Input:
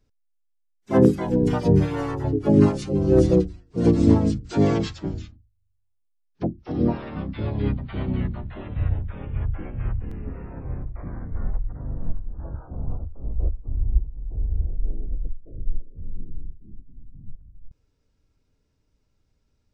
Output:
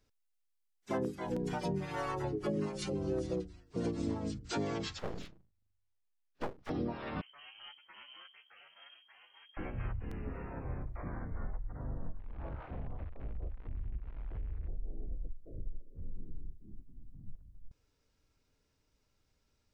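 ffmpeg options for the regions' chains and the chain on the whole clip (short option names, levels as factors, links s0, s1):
-filter_complex "[0:a]asettb=1/sr,asplit=3[s0][s1][s2];[s0]atrim=end=1.364[s3];[s1]atrim=start=1.36:end=2.9,asetpts=PTS-STARTPTS,afade=t=in:d=0.004:c=qsin,afade=t=out:st=1.536:d=0.004:c=qsin,acompressor=mode=upward:threshold=0.0794:ratio=2.5:attack=3.2:release=140:knee=2.83:detection=peak,aecho=1:1:5.4:0.64,atrim=end_sample=67914[s4];[s2]atrim=start=2.896[s5];[s3][s4]acrossfade=d=0.004:c1=hsin:c2=qsin[s6];[s6][s5]acrossfade=d=0.004:c1=qsin:c2=hsin,asettb=1/sr,asplit=3[s7][s8][s9];[s7]atrim=end=4.994[s10];[s8]atrim=start=4.99:end=6.7,asetpts=PTS-STARTPTS,afade=t=in:d=0.004:c=qsin,afade=t=out:st=1.706:d=0.004:c=qsin,lowpass=f=3800:p=1,aeval=exprs='abs(val(0))':c=same[s11];[s9]atrim=start=6.696[s12];[s10][s11]acrossfade=d=0.004:c1=hsin:c2=qsin[s13];[s13][s12]acrossfade=d=0.004:c1=qsin:c2=hsin,asettb=1/sr,asplit=3[s14][s15][s16];[s14]atrim=end=7.214[s17];[s15]atrim=start=7.21:end=9.57,asetpts=PTS-STARTPTS,afade=t=in:d=0.004:c=qsin,afade=t=out:st=2.356:d=0.004:c=qsin,aderivative,lowpass=f=2800:t=q:w=0.5098,lowpass=f=2800:t=q:w=0.6013,lowpass=f=2800:t=q:w=0.9,lowpass=f=2800:t=q:w=2.563,afreqshift=-3300[s18];[s16]atrim=start=9.566[s19];[s17][s18]acrossfade=d=0.004:c1=hsin:c2=qsin[s20];[s20][s19]acrossfade=d=0.004:c1=qsin:c2=hsin,asettb=1/sr,asplit=3[s21][s22][s23];[s21]atrim=end=12.194[s24];[s22]atrim=start=12.19:end=14.68,asetpts=PTS-STARTPTS,afade=t=in:d=0.004:c=qsin,afade=t=out:st=2.486:d=0.004:c=qsin,aeval=exprs='val(0)*gte(abs(val(0)),0.00596)':c=same,acompressor=threshold=0.0398:ratio=2.5:attack=3.2:release=140:knee=1:detection=peak,lowpass=f=2500:w=0.5412,lowpass=f=2500:w=1.3066[s25];[s23]atrim=start=14.676[s26];[s24][s25]acrossfade=d=0.004:c1=hsin:c2=qsin[s27];[s27][s26]acrossfade=d=0.004:c1=qsin:c2=hsin,lowshelf=f=440:g=-9.5,acompressor=threshold=0.02:ratio=6,volume=1.12"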